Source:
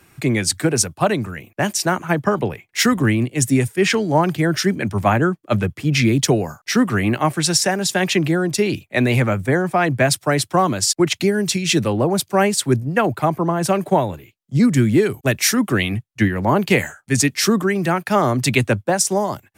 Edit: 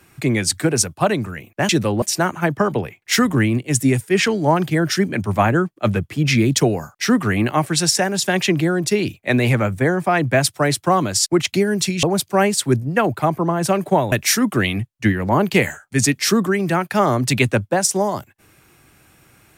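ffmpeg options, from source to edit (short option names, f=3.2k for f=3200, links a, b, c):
-filter_complex "[0:a]asplit=5[a][b][c][d][e];[a]atrim=end=1.692[f];[b]atrim=start=11.698:end=12.032[g];[c]atrim=start=1.688:end=11.702[h];[d]atrim=start=12.028:end=14.122[i];[e]atrim=start=15.278[j];[f][g]acrossfade=d=0.004:c1=hsin:c2=hsin[k];[k][h]acrossfade=d=0.004:c1=hsin:c2=hsin[l];[l][i]acrossfade=d=0.004:c1=hsin:c2=hsin[m];[m][j]acrossfade=d=0.004:c1=hsin:c2=hsin"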